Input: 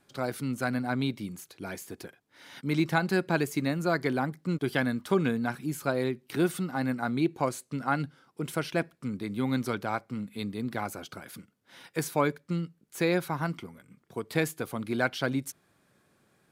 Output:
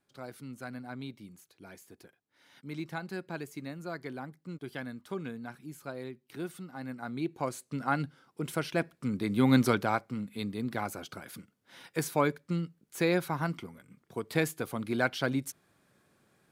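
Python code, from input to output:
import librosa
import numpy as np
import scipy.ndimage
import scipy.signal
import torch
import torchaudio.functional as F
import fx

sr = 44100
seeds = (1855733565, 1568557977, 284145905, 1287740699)

y = fx.gain(x, sr, db=fx.line((6.72, -12.0), (7.8, -1.5), (8.76, -1.5), (9.6, 6.5), (10.15, -1.0)))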